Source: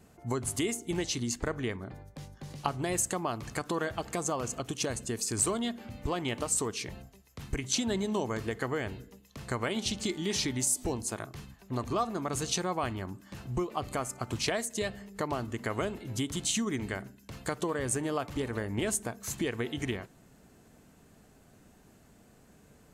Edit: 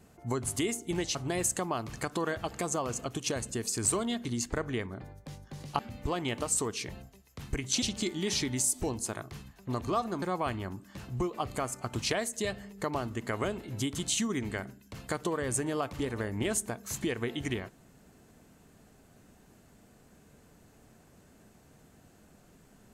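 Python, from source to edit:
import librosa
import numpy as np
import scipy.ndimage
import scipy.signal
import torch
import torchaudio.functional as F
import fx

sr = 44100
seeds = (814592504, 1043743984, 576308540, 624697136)

y = fx.edit(x, sr, fx.move(start_s=1.15, length_s=1.54, to_s=5.79),
    fx.cut(start_s=7.82, length_s=2.03),
    fx.cut(start_s=12.25, length_s=0.34), tone=tone)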